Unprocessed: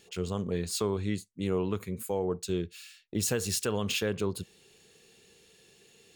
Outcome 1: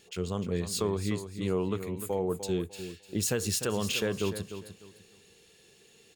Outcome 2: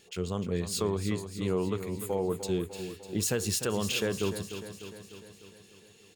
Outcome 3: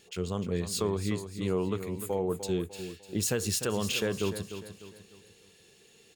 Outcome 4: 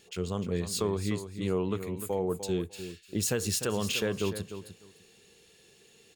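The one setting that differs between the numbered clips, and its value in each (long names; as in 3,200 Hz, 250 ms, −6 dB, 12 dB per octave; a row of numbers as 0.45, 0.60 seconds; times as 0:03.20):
repeating echo, feedback: 26, 60, 40, 17%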